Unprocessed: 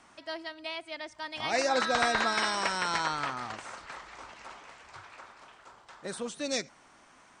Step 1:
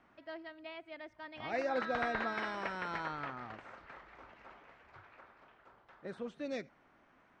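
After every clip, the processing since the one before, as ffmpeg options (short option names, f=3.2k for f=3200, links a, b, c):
-af "lowpass=1.9k,equalizer=f=990:w=1.5:g=-5.5,volume=-4.5dB"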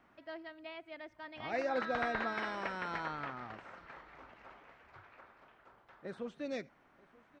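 -af "aecho=1:1:934:0.0668"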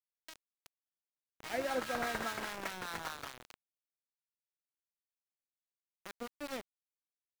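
-filter_complex "[0:a]aeval=exprs='val(0)*gte(abs(val(0)),0.015)':c=same,acrossover=split=840[a][b];[a]aeval=exprs='val(0)*(1-0.5/2+0.5/2*cos(2*PI*5*n/s))':c=same[c];[b]aeval=exprs='val(0)*(1-0.5/2-0.5/2*cos(2*PI*5*n/s))':c=same[d];[c][d]amix=inputs=2:normalize=0,volume=1.5dB"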